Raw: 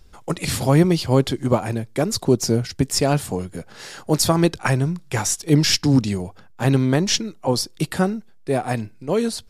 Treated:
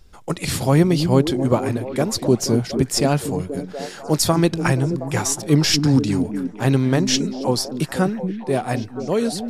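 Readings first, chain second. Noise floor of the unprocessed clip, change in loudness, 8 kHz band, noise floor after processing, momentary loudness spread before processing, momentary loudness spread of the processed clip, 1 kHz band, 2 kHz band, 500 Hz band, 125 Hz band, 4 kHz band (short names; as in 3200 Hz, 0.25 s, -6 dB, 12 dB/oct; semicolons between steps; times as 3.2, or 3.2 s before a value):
-46 dBFS, +0.5 dB, 0.0 dB, -38 dBFS, 11 LU, 10 LU, +0.5 dB, 0.0 dB, +1.0 dB, +0.5 dB, 0.0 dB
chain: delay with a stepping band-pass 0.24 s, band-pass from 220 Hz, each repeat 0.7 oct, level -4 dB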